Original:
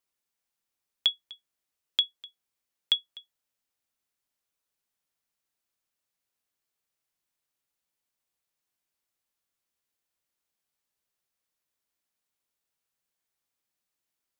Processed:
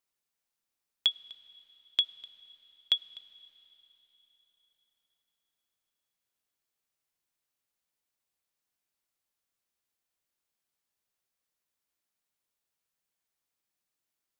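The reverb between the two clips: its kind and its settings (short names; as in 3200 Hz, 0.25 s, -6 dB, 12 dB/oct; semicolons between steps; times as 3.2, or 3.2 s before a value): digital reverb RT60 4.1 s, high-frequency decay 0.95×, pre-delay 20 ms, DRR 19 dB; gain -1.5 dB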